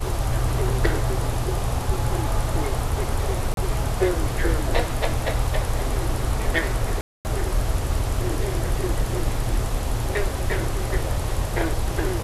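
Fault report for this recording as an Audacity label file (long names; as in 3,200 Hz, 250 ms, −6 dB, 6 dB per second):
3.540000	3.570000	drop-out 32 ms
7.010000	7.250000	drop-out 239 ms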